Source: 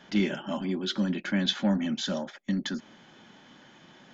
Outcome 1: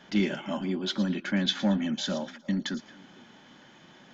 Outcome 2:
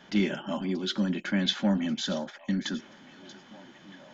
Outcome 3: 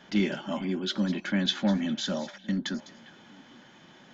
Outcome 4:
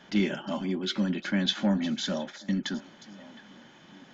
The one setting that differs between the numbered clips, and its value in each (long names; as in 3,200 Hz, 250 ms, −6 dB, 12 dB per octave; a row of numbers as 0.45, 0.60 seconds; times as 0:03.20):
echo through a band-pass that steps, delay time: 113, 632, 202, 358 milliseconds